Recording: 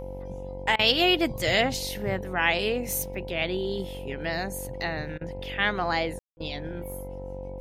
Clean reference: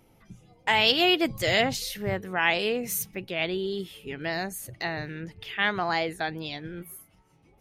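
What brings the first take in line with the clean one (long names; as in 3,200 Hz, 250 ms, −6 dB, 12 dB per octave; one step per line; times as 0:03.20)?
hum removal 47.1 Hz, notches 21
notch filter 520 Hz, Q 30
ambience match 0:06.19–0:06.37
repair the gap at 0:00.76/0:05.18/0:06.37, 30 ms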